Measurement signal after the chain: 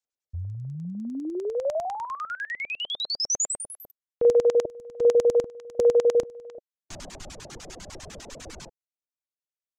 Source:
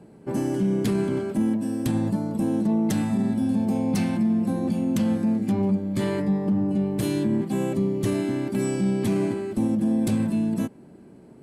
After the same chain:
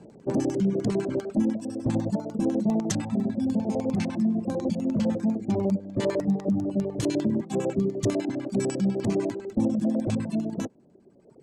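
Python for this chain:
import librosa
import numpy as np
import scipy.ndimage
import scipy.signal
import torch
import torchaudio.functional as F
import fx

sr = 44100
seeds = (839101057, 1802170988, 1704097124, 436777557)

y = fx.filter_lfo_lowpass(x, sr, shape='square', hz=10.0, low_hz=600.0, high_hz=6700.0, q=2.5)
y = fx.dereverb_blind(y, sr, rt60_s=1.9)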